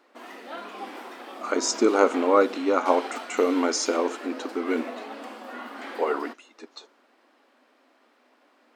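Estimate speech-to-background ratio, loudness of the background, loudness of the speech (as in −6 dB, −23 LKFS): 14.0 dB, −38.5 LKFS, −24.5 LKFS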